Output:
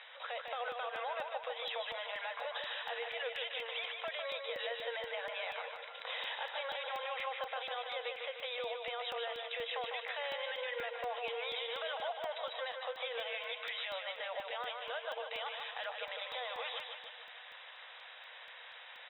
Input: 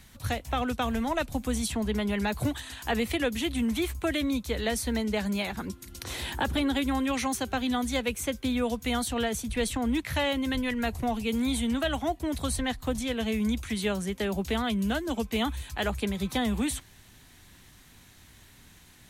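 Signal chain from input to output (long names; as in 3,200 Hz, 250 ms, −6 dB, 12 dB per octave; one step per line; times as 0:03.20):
brick-wall band-pass 460–3,900 Hz
brickwall limiter −32.5 dBFS, peak gain reduction 15 dB
downward compressor 1.5 to 1, threshold −56 dBFS, peak gain reduction 7.5 dB
repeating echo 151 ms, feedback 55%, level −5 dB
regular buffer underruns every 0.24 s, samples 64, zero, from 0:00.48
level +7 dB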